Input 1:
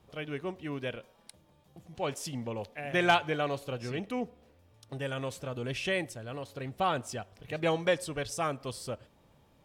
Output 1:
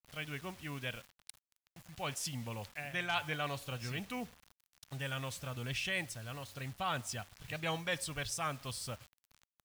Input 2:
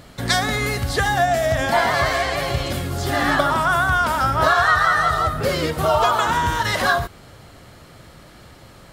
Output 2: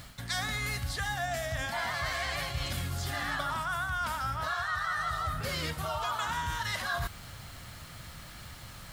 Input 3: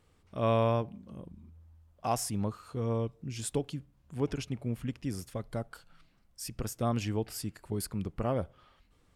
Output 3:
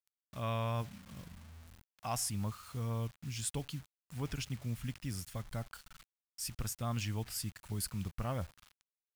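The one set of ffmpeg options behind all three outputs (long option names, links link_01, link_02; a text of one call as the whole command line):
ffmpeg -i in.wav -af "acrusher=bits=8:mix=0:aa=0.000001,equalizer=frequency=400:width_type=o:width=1.8:gain=-13.5,areverse,acompressor=threshold=-32dB:ratio=6,areverse,volume=1dB" out.wav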